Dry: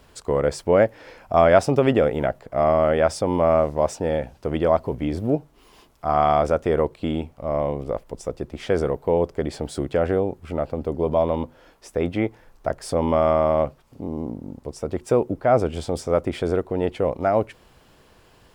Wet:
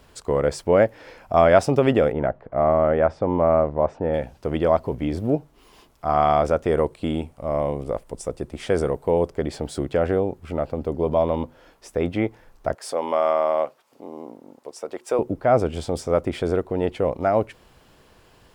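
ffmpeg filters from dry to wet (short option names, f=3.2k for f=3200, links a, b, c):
-filter_complex "[0:a]asettb=1/sr,asplit=3[a][b][c];[a]atrim=end=2.124[d];[b]atrim=start=2.12:end=4.14,asetpts=PTS-STARTPTS,afade=t=in:d=0.004:c=qsin,afade=t=out:st=2.016:d=0.004:c=qsin,lowpass=1.7k[e];[c]atrim=start=4.136[f];[d][e]acrossfade=d=0.004:c1=hsin:c2=qsin[g];[g][f]acrossfade=d=0.004:c1=qsin:c2=hsin,asettb=1/sr,asplit=3[h][i][j];[h]atrim=end=6.684[k];[i]atrim=start=6.68:end=9.3,asetpts=PTS-STARTPTS,afade=t=in:d=0.004:c=qsin,afade=t=out:st=2.616:d=0.004:c=qsin,equalizer=f=9k:t=o:w=0.52:g=8.5[l];[j]atrim=start=9.296[m];[k][l]acrossfade=d=0.004:c1=hsin:c2=qsin[n];[n][m]acrossfade=d=0.004:c1=qsin:c2=hsin,asettb=1/sr,asplit=3[o][p][q];[o]atrim=end=12.754[r];[p]atrim=start=12.75:end=15.19,asetpts=PTS-STARTPTS,afade=t=in:d=0.004:c=qsin,afade=t=out:st=2.436:d=0.004:c=qsin,highpass=480[s];[q]atrim=start=15.186[t];[r][s]acrossfade=d=0.004:c1=hsin:c2=qsin[u];[u][t]acrossfade=d=0.004:c1=qsin:c2=hsin"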